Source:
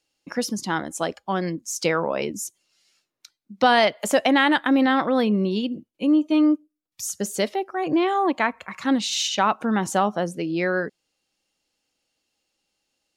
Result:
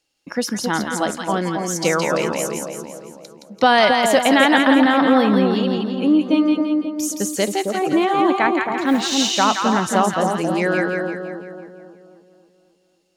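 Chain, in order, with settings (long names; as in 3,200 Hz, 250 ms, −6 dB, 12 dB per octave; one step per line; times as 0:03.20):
0:08.77–0:09.31: noise that follows the level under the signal 31 dB
on a send: echo with a time of its own for lows and highs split 1,000 Hz, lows 269 ms, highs 169 ms, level −3.5 dB
on the sum: level +3 dB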